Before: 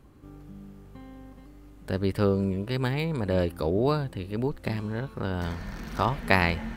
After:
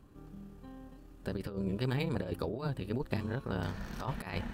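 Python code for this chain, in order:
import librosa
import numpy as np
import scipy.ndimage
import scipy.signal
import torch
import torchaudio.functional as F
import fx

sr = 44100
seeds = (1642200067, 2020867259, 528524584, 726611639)

y = fx.notch(x, sr, hz=2100.0, q=11.0)
y = fx.over_compress(y, sr, threshold_db=-27.0, ratio=-0.5)
y = fx.stretch_grains(y, sr, factor=0.67, grain_ms=62.0)
y = y * 10.0 ** (-5.0 / 20.0)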